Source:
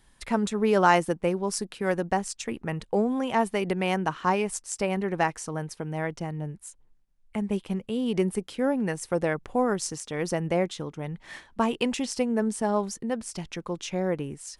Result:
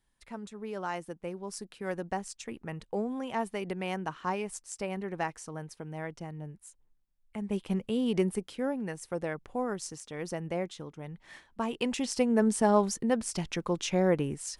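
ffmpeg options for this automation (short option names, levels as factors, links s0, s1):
-af "volume=3.16,afade=t=in:st=0.91:d=1.12:silence=0.398107,afade=t=in:st=7.38:d=0.41:silence=0.398107,afade=t=out:st=7.79:d=1.01:silence=0.398107,afade=t=in:st=11.63:d=0.93:silence=0.316228"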